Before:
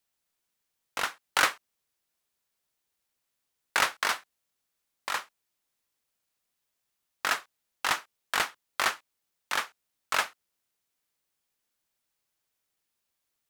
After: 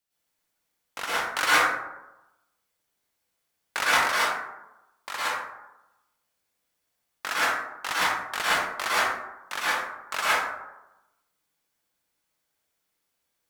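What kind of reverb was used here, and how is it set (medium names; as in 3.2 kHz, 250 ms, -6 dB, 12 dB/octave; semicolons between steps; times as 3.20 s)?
plate-style reverb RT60 0.95 s, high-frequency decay 0.4×, pre-delay 95 ms, DRR -9.5 dB; trim -4.5 dB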